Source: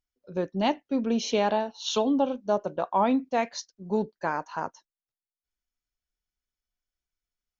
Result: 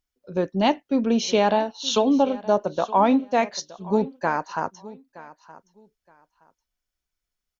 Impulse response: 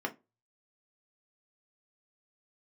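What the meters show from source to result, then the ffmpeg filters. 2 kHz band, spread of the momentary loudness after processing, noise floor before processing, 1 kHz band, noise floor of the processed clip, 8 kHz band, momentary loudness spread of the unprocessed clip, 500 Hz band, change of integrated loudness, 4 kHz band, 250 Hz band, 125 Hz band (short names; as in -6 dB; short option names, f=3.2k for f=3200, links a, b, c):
+5.0 dB, 11 LU, under -85 dBFS, +5.0 dB, under -85 dBFS, n/a, 10 LU, +5.0 dB, +5.0 dB, +5.0 dB, +5.0 dB, +5.0 dB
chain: -af "aecho=1:1:920|1840:0.112|0.0236,volume=5dB"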